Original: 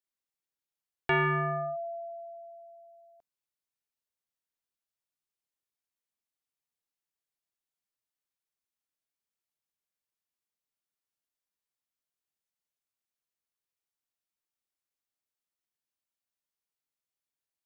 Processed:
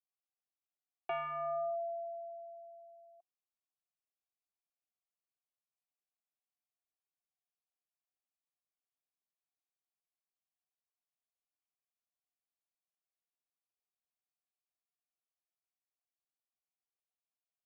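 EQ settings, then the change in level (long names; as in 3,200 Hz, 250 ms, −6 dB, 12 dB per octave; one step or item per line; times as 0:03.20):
formant filter a
parametric band 320 Hz +7.5 dB 0.44 octaves
notch filter 380 Hz, Q 12
+1.0 dB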